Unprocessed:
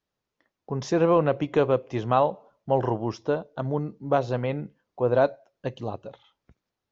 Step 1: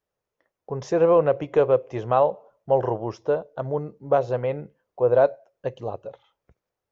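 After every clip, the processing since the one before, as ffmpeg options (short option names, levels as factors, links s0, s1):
-af "equalizer=f=250:t=o:w=1:g=-7,equalizer=f=500:t=o:w=1:g=7,equalizer=f=4000:t=o:w=1:g=-6,volume=0.891"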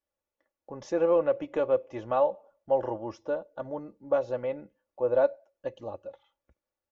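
-af "aecho=1:1:3.5:0.68,volume=0.398"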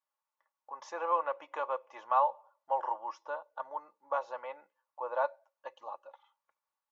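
-af "highpass=f=990:t=q:w=4.9,volume=0.596"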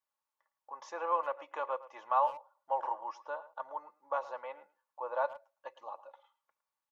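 -filter_complex "[0:a]asplit=2[s0][s1];[s1]adelay=110,highpass=300,lowpass=3400,asoftclip=type=hard:threshold=0.0708,volume=0.158[s2];[s0][s2]amix=inputs=2:normalize=0,volume=0.841"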